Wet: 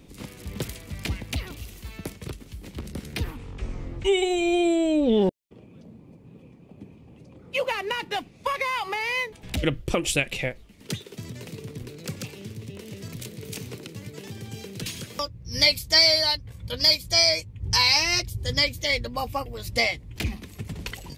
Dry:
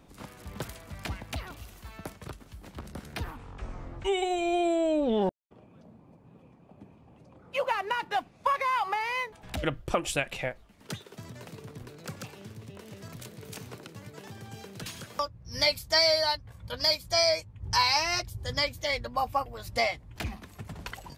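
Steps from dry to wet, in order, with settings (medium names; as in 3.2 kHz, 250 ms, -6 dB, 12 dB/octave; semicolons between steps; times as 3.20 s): high-order bell 1 kHz -9 dB; trim +7 dB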